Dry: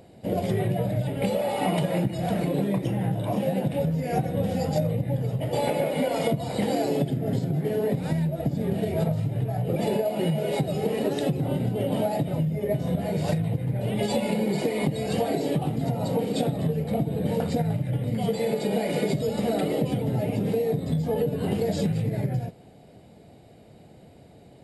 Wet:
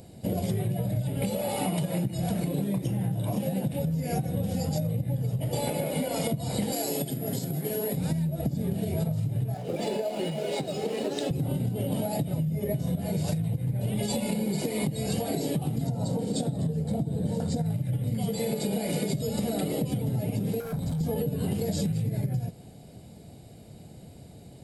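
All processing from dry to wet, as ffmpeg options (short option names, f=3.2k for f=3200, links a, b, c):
-filter_complex "[0:a]asettb=1/sr,asplit=3[a][b][c];[a]atrim=end=6.724[d];[b]atrim=start=6.72:end=7.97,asetpts=PTS-STARTPTS,afade=t=in:d=0.004:c=qsin,afade=t=out:st=1.246:d=0.004:c=qsin,highpass=f=430:p=1,highshelf=f=8.2k:g=10[e];[c]atrim=start=7.966[f];[d][e]acrossfade=d=0.004:c1=hsin:c2=qsin[g];[g][f]acrossfade=d=0.004:c1=qsin:c2=hsin,asettb=1/sr,asplit=3[h][i][j];[h]atrim=end=9.544[k];[i]atrim=start=9.54:end=11.31,asetpts=PTS-STARTPTS,afade=t=in:d=0.004:c=qsin,afade=t=out:st=1.766:d=0.004:c=qsin,acrossover=split=250 7400:gain=0.126 1 0.0891[l][m][n];[l][m][n]amix=inputs=3:normalize=0,aeval=exprs='sgn(val(0))*max(abs(val(0))-0.002,0)':c=same[o];[j]atrim=start=11.306[p];[k][o]acrossfade=d=0.004:c1=hsin:c2=qsin[q];[q][p]acrossfade=d=0.004:c1=qsin:c2=hsin,asettb=1/sr,asplit=3[r][s][t];[r]atrim=end=15.874[u];[s]atrim=start=15.87:end=17.66,asetpts=PTS-STARTPTS,afade=t=in:d=0.004:c=qsin,afade=t=out:st=1.786:d=0.004:c=qsin,lowpass=f=9.1k:w=0.5412,lowpass=f=9.1k:w=1.3066,equalizer=f=2.5k:w=1.9:g=-8.5,bandreject=f=1.2k:w=14[v];[t]atrim=start=17.656[w];[u][v]acrossfade=d=0.004:c1=hsin:c2=qsin[x];[x][w]acrossfade=d=0.004:c1=qsin:c2=hsin,asettb=1/sr,asplit=3[y][z][aa];[y]atrim=end=20.604[ab];[z]atrim=start=20.6:end=21.01,asetpts=PTS-STARTPTS,afade=t=in:d=0.004:c=qsin,afade=t=out:st=0.406:d=0.004:c=qsin,asoftclip=type=hard:threshold=-28.5dB,aecho=1:1:1.3:0.4,atrim=end_sample=18081,acrossover=split=1800|6000[ac][ad][ae];[ac]acompressor=threshold=-31dB:ratio=4[af];[ad]acompressor=threshold=-54dB:ratio=4[ag];[ae]acompressor=threshold=-58dB:ratio=4[ah];[af][ag][ah]amix=inputs=3:normalize=0[ai];[aa]atrim=start=21.006[aj];[ab][ai]acrossfade=d=0.004:c1=hsin:c2=qsin[ak];[ak][aj]acrossfade=d=0.004:c1=qsin:c2=hsin,bass=f=250:g=8,treble=f=4k:g=12,bandreject=f=1.9k:w=28,acompressor=threshold=-23dB:ratio=6,volume=-2dB"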